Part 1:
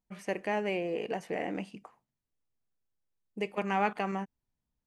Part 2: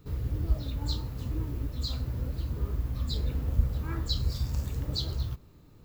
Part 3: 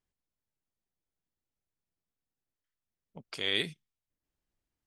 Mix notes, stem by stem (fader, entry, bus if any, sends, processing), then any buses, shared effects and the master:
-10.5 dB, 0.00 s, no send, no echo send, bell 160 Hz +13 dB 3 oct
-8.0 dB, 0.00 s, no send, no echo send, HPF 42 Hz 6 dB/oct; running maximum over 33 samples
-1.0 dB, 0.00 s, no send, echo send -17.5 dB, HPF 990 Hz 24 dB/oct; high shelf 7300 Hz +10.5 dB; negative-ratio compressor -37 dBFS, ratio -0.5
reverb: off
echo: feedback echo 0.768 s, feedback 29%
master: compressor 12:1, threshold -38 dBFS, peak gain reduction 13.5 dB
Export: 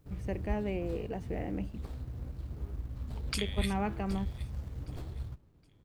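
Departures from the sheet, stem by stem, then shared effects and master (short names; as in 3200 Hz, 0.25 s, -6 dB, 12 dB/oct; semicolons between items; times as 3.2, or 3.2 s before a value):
stem 2: missing HPF 42 Hz 6 dB/oct; master: missing compressor 12:1, threshold -38 dBFS, peak gain reduction 13.5 dB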